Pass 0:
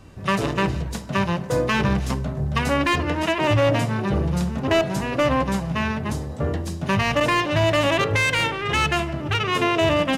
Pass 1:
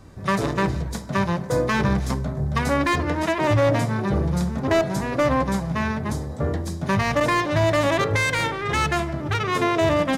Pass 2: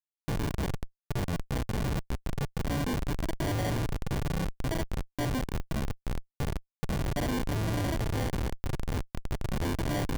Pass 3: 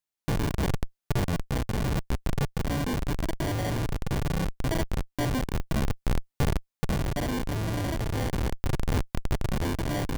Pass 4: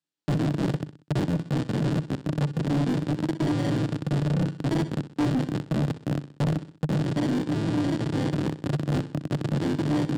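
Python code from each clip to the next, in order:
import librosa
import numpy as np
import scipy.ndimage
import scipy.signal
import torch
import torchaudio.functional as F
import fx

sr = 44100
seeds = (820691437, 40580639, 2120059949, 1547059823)

y1 = fx.peak_eq(x, sr, hz=2800.0, db=-11.0, octaves=0.28)
y2 = y1 + 0.56 * np.pad(y1, (int(6.7 * sr / 1000.0), 0))[:len(y1)]
y2 = fx.sample_hold(y2, sr, seeds[0], rate_hz=1300.0, jitter_pct=0)
y2 = fx.schmitt(y2, sr, flips_db=-19.0)
y2 = F.gain(torch.from_numpy(y2), -8.0).numpy()
y3 = fx.rider(y2, sr, range_db=10, speed_s=0.5)
y3 = F.gain(torch.from_numpy(y3), 3.0).numpy()
y4 = fx.cabinet(y3, sr, low_hz=120.0, low_slope=24, high_hz=7700.0, hz=(150.0, 300.0, 700.0, 1100.0, 2200.0, 6200.0), db=(9, 10, -5, -5, -6, -7))
y4 = fx.echo_feedback(y4, sr, ms=63, feedback_pct=43, wet_db=-15.0)
y4 = np.clip(y4, -10.0 ** (-23.0 / 20.0), 10.0 ** (-23.0 / 20.0))
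y4 = F.gain(torch.from_numpy(y4), 2.5).numpy()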